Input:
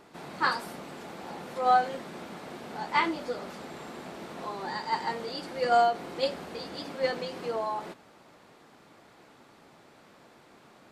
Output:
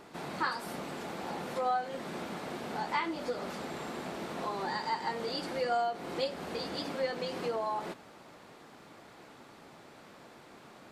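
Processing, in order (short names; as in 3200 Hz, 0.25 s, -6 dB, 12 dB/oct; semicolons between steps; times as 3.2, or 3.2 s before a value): compressor 3:1, threshold -34 dBFS, peak gain reduction 12.5 dB; gain +2.5 dB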